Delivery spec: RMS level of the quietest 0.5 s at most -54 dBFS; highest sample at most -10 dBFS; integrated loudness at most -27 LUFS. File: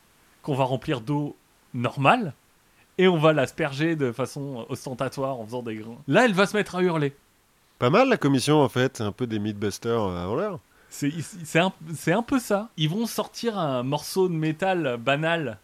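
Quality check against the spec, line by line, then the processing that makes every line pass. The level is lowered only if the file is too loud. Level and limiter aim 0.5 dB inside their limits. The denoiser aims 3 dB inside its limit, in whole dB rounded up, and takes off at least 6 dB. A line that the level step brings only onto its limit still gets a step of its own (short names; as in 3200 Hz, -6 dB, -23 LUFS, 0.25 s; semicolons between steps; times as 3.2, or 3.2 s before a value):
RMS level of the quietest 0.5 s -62 dBFS: OK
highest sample -5.0 dBFS: fail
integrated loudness -24.5 LUFS: fail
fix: gain -3 dB; limiter -10.5 dBFS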